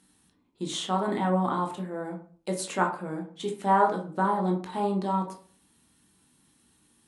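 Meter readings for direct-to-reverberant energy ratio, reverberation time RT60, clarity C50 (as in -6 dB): 1.0 dB, 0.45 s, 8.5 dB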